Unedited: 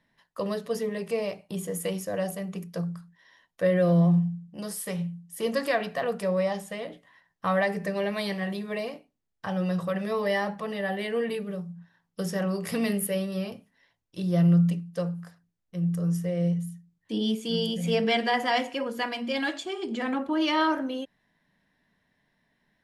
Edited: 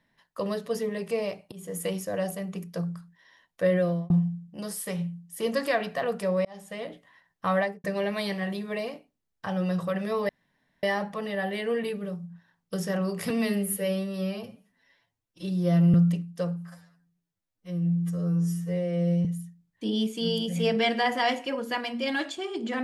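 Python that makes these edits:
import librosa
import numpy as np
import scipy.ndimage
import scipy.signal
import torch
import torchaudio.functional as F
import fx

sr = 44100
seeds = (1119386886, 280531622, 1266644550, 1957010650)

y = fx.studio_fade_out(x, sr, start_s=7.57, length_s=0.27)
y = fx.edit(y, sr, fx.fade_in_from(start_s=1.52, length_s=0.3, floor_db=-18.5),
    fx.fade_out_span(start_s=3.74, length_s=0.36),
    fx.fade_in_span(start_s=6.45, length_s=0.37),
    fx.insert_room_tone(at_s=10.29, length_s=0.54),
    fx.stretch_span(start_s=12.76, length_s=1.76, factor=1.5),
    fx.stretch_span(start_s=15.23, length_s=1.3, factor=2.0), tone=tone)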